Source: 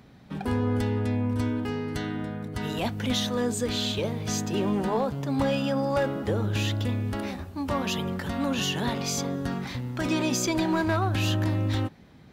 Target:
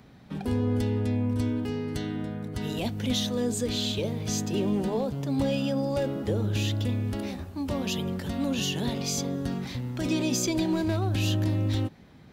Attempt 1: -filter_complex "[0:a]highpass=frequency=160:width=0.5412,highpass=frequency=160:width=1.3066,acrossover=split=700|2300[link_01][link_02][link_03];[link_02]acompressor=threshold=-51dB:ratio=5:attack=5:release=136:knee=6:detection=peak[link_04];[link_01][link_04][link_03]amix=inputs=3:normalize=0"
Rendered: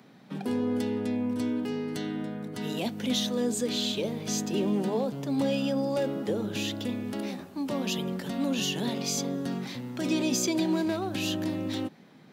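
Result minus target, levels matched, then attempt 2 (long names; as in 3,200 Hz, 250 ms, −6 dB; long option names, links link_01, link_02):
125 Hz band −8.0 dB
-filter_complex "[0:a]acrossover=split=700|2300[link_01][link_02][link_03];[link_02]acompressor=threshold=-51dB:ratio=5:attack=5:release=136:knee=6:detection=peak[link_04];[link_01][link_04][link_03]amix=inputs=3:normalize=0"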